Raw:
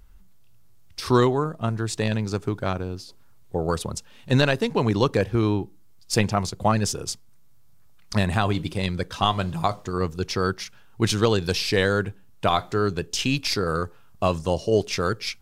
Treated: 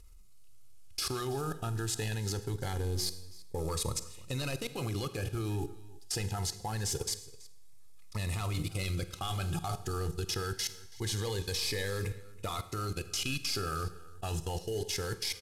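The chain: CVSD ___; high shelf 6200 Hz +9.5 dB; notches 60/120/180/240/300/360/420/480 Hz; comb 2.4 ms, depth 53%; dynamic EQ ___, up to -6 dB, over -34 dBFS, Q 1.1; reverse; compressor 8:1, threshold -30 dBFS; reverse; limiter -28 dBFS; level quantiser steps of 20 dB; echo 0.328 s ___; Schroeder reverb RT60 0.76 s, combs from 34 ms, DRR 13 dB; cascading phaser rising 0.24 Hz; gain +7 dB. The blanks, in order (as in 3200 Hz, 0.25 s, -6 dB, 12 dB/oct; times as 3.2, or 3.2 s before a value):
64 kbps, 380 Hz, -21 dB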